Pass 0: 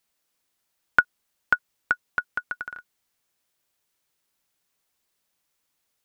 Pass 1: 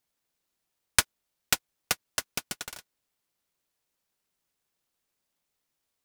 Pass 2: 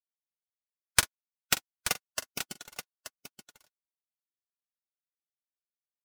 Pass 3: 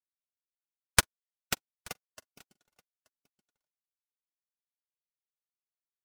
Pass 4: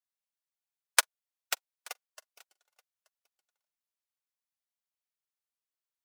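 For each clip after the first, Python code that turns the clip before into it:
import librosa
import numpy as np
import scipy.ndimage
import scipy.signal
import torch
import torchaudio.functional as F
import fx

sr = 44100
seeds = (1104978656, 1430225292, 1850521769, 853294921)

y1 = fx.noise_mod_delay(x, sr, seeds[0], noise_hz=3500.0, depth_ms=0.19)
y1 = F.gain(torch.from_numpy(y1), -4.0).numpy()
y2 = fx.bin_expand(y1, sr, power=1.5)
y2 = fx.echo_multitap(y2, sr, ms=(43, 879), db=(-15.5, -10.5))
y3 = fx.tilt_shelf(y2, sr, db=3.5, hz=970.0)
y3 = fx.upward_expand(y3, sr, threshold_db=-40.0, expansion=2.5)
y3 = F.gain(torch.from_numpy(y3), 2.5).numpy()
y4 = scipy.signal.sosfilt(scipy.signal.butter(4, 540.0, 'highpass', fs=sr, output='sos'), y3)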